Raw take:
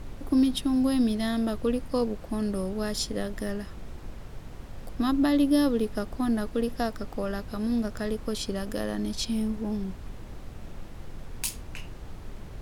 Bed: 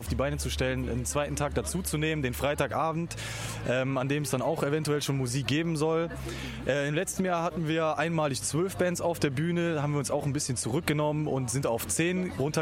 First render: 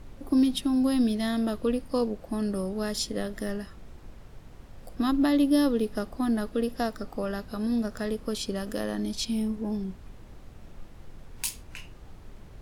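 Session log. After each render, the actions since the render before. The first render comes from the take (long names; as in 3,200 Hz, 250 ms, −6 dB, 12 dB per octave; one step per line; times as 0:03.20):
noise reduction from a noise print 6 dB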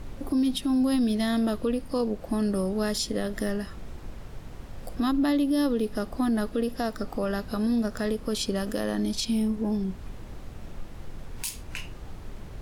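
in parallel at +1 dB: downward compressor, threshold −35 dBFS, peak gain reduction 15.5 dB
on the sum: brickwall limiter −18 dBFS, peak gain reduction 7.5 dB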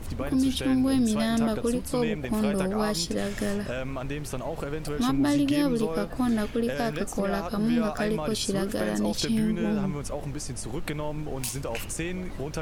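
mix in bed −5 dB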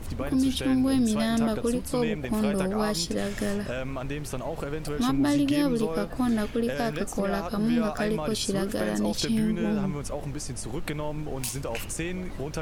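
no processing that can be heard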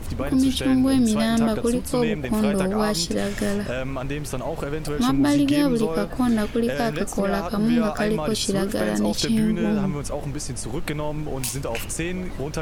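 level +4.5 dB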